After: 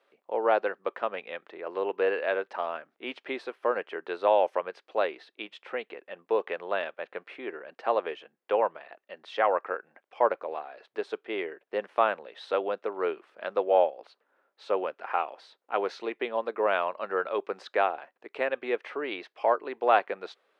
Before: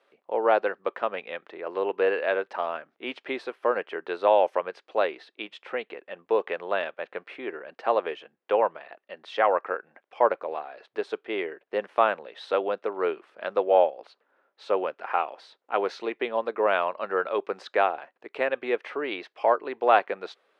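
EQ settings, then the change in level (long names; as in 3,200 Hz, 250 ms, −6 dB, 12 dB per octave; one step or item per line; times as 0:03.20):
parametric band 97 Hz −7 dB 0.79 octaves
−2.5 dB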